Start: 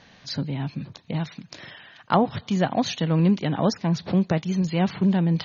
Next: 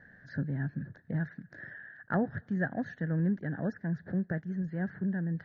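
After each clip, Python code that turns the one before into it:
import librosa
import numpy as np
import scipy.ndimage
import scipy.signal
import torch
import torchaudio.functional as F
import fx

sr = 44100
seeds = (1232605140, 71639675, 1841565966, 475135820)

y = fx.curve_eq(x, sr, hz=(130.0, 630.0, 1100.0, 1700.0, 2400.0), db=(0, -5, -17, 11, -27))
y = fx.rider(y, sr, range_db=4, speed_s=2.0)
y = y * librosa.db_to_amplitude(-8.0)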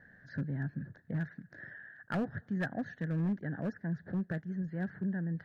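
y = np.clip(x, -10.0 ** (-25.0 / 20.0), 10.0 ** (-25.0 / 20.0))
y = y * librosa.db_to_amplitude(-2.5)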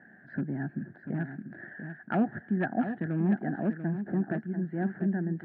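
y = fx.cabinet(x, sr, low_hz=200.0, low_slope=12, high_hz=2500.0, hz=(220.0, 350.0, 500.0, 750.0, 1100.0, 1900.0), db=(6, 8, -8, 7, -6, -4))
y = y + 10.0 ** (-9.0 / 20.0) * np.pad(y, (int(691 * sr / 1000.0), 0))[:len(y)]
y = y * librosa.db_to_amplitude(5.5)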